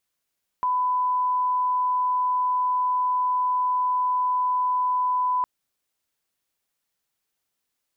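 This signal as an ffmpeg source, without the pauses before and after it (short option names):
-f lavfi -i "sine=f=1000:d=4.81:r=44100,volume=-1.94dB"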